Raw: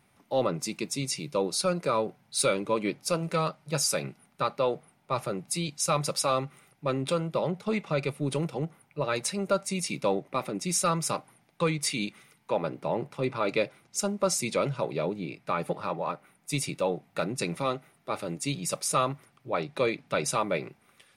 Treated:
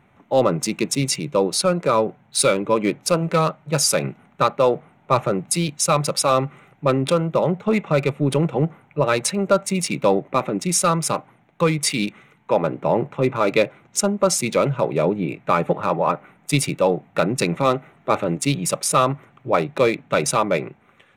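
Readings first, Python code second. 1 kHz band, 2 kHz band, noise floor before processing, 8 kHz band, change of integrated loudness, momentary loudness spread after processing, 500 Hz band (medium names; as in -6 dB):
+9.5 dB, +8.0 dB, -66 dBFS, +8.0 dB, +9.0 dB, 5 LU, +9.5 dB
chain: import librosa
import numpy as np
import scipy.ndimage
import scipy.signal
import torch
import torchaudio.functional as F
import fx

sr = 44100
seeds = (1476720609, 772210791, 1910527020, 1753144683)

p1 = fx.wiener(x, sr, points=9)
p2 = fx.rider(p1, sr, range_db=10, speed_s=0.5)
p3 = p1 + (p2 * 10.0 ** (3.0 / 20.0))
y = p3 * 10.0 ** (2.0 / 20.0)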